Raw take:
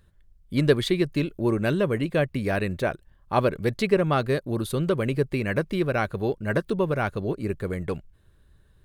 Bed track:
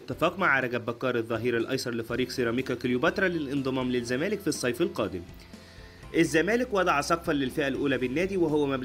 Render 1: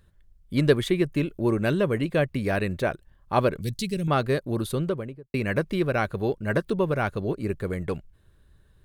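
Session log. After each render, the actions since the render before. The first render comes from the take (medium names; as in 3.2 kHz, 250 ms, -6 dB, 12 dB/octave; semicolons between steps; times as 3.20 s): 0.76–1.29 s: peaking EQ 4.4 kHz -7.5 dB 0.55 oct; 3.61–4.08 s: FFT filter 170 Hz 0 dB, 1.1 kHz -26 dB, 3.3 kHz -1 dB, 6.3 kHz +6 dB; 4.64–5.34 s: studio fade out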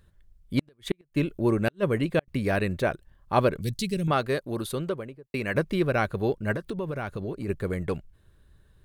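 0.59–2.28 s: inverted gate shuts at -13 dBFS, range -42 dB; 4.11–5.55 s: bass shelf 270 Hz -7.5 dB; 6.52–7.48 s: compression 5:1, threshold -28 dBFS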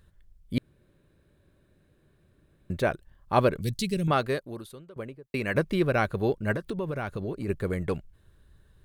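0.58–2.70 s: room tone; 4.26–4.96 s: fade out quadratic, to -20 dB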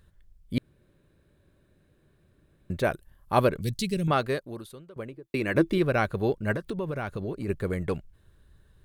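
2.84–3.47 s: peaking EQ 12 kHz +14 dB 0.63 oct; 5.12–5.78 s: small resonant body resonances 330/3500 Hz, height 13 dB, ringing for 95 ms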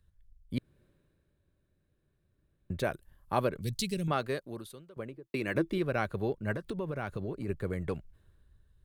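compression 2:1, threshold -34 dBFS, peak gain reduction 10 dB; three bands expanded up and down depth 40%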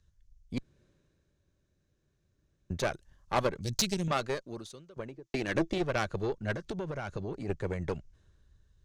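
resonant low-pass 6.3 kHz, resonance Q 3.8; Chebyshev shaper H 8 -19 dB, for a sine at -12.5 dBFS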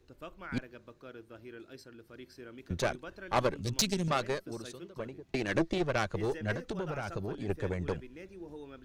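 add bed track -21 dB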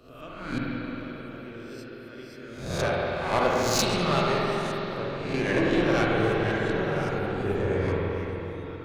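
reverse spectral sustain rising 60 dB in 0.63 s; spring tank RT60 3.8 s, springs 45/52 ms, chirp 25 ms, DRR -4.5 dB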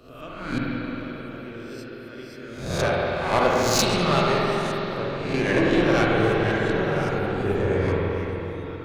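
trim +3.5 dB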